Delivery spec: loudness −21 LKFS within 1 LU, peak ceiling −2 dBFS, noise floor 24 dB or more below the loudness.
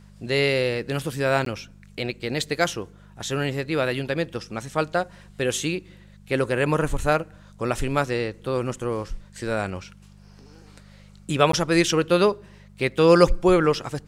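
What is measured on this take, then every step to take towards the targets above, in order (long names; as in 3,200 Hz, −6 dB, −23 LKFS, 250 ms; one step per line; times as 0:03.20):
number of dropouts 2; longest dropout 13 ms; mains hum 50 Hz; hum harmonics up to 200 Hz; level of the hum −48 dBFS; integrated loudness −23.5 LKFS; sample peak −3.0 dBFS; target loudness −21.0 LKFS
→ repair the gap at 0:01.45/0:11.52, 13 ms
hum removal 50 Hz, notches 4
level +2.5 dB
brickwall limiter −2 dBFS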